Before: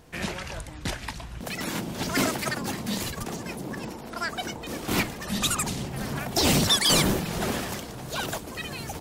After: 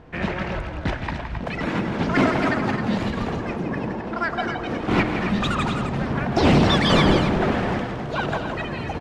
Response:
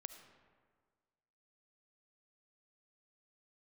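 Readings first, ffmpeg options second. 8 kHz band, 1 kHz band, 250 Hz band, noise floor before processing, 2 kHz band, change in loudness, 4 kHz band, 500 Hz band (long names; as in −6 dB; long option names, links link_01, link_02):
−14.5 dB, +8.0 dB, +8.0 dB, −40 dBFS, +5.5 dB, +4.5 dB, −2.0 dB, +8.0 dB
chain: -filter_complex "[0:a]lowpass=2100,aecho=1:1:166.2|265.3:0.398|0.398,asplit=2[link_01][link_02];[1:a]atrim=start_sample=2205[link_03];[link_02][link_03]afir=irnorm=-1:irlink=0,volume=7dB[link_04];[link_01][link_04]amix=inputs=2:normalize=0"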